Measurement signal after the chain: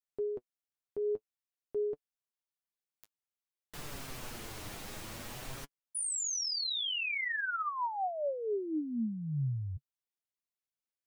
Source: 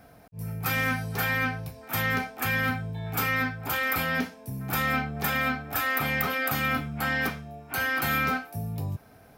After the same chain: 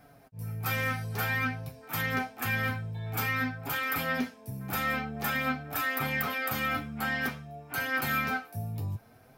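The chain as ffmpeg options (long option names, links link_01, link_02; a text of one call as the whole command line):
ffmpeg -i in.wav -af "flanger=delay=6.7:depth=3.4:regen=33:speed=0.52:shape=triangular" out.wav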